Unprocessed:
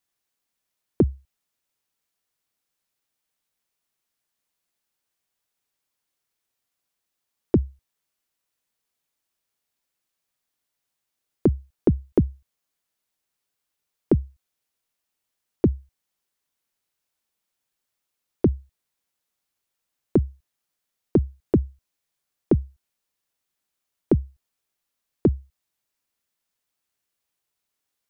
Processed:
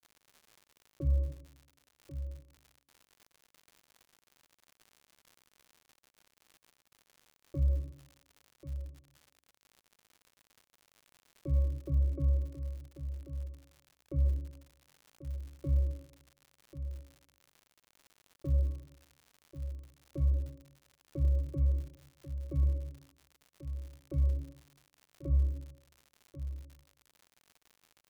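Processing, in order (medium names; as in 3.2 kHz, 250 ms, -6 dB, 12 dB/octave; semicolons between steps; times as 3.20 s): spectral sustain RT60 0.82 s; static phaser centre 880 Hz, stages 6; pitch-class resonator C#, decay 0.38 s; on a send: delay 1089 ms -11 dB; on the sum: crackle 120 per s -46 dBFS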